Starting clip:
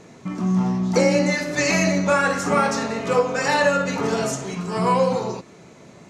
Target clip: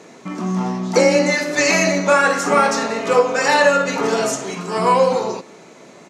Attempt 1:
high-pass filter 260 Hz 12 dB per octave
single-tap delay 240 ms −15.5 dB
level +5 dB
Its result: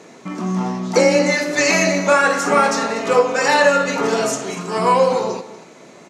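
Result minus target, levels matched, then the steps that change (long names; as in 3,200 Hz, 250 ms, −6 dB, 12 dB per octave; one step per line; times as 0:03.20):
echo-to-direct +12 dB
change: single-tap delay 240 ms −27.5 dB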